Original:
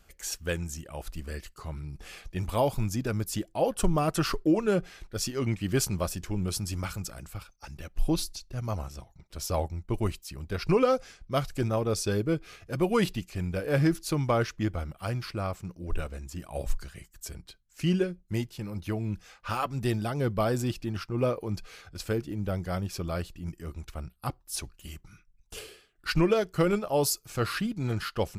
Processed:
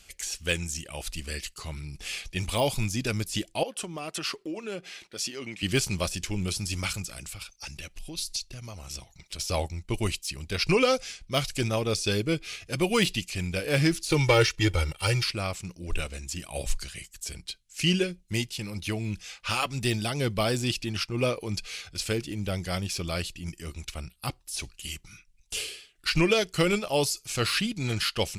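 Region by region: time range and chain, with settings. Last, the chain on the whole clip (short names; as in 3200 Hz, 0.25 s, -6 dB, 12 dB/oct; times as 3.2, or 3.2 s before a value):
3.63–5.63 HPF 220 Hz + high shelf 3900 Hz -7.5 dB + compressor 2:1, threshold -40 dBFS
7.06–9.39 compressor 5:1, threshold -38 dBFS + mismatched tape noise reduction encoder only
14.1–15.24 sample leveller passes 1 + comb 2.2 ms, depth 85%
whole clip: de-esser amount 90%; band shelf 4800 Hz +13 dB 2.7 oct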